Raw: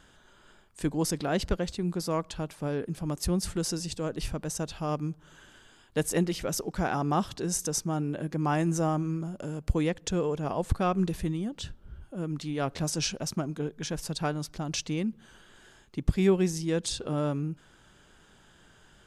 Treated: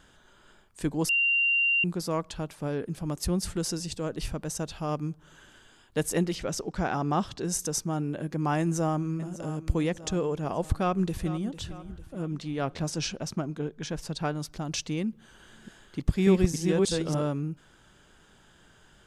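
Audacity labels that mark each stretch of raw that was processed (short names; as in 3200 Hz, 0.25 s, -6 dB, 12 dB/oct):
1.090000	1.840000	bleep 2770 Hz -21 dBFS
6.350000	7.450000	LPF 7600 Hz
8.590000	9.460000	echo throw 0.6 s, feedback 55%, level -13 dB
10.640000	11.460000	echo throw 0.45 s, feedback 50%, level -14 dB
12.220000	14.350000	high shelf 8700 Hz -11.5 dB
15.100000	17.270000	reverse delay 0.292 s, level -2 dB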